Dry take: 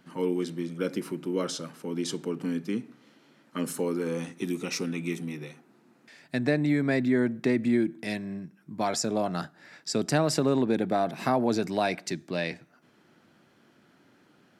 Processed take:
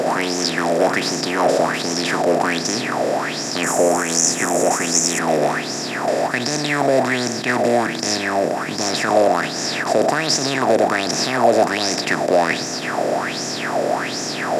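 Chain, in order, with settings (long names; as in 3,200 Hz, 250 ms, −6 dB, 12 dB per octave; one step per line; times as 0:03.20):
compressor on every frequency bin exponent 0.2
0:03.63–0:05.19: high shelf with overshoot 5,400 Hz +7.5 dB, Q 3
boost into a limiter +6.5 dB
auto-filter bell 1.3 Hz 530–6,200 Hz +18 dB
level −11 dB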